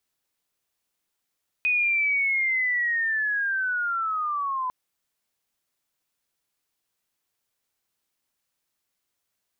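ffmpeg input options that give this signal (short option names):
-f lavfi -i "aevalsrc='pow(10,(-19.5-5.5*t/3.05)/20)*sin(2*PI*(2500*t-1500*t*t/(2*3.05)))':d=3.05:s=44100"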